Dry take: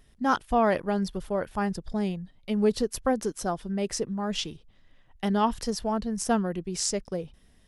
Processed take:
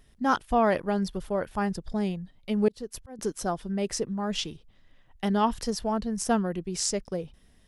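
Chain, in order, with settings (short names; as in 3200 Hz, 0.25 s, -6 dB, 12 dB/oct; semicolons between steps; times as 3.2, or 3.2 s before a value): 2.68–3.19 auto swell 0.493 s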